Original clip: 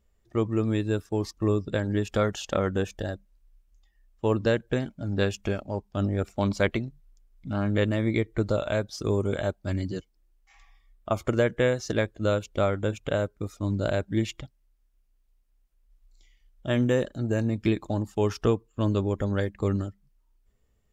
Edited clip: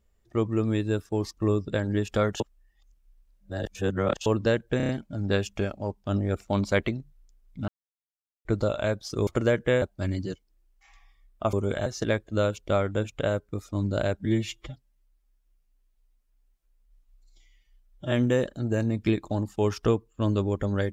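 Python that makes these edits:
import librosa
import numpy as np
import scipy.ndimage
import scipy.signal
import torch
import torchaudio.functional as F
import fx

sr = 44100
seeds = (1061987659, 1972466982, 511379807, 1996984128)

y = fx.edit(x, sr, fx.reverse_span(start_s=2.4, length_s=1.86),
    fx.stutter(start_s=4.77, slice_s=0.03, count=5),
    fx.silence(start_s=7.56, length_s=0.77),
    fx.swap(start_s=9.15, length_s=0.33, other_s=11.19, other_length_s=0.55),
    fx.stretch_span(start_s=14.13, length_s=2.58, factor=1.5), tone=tone)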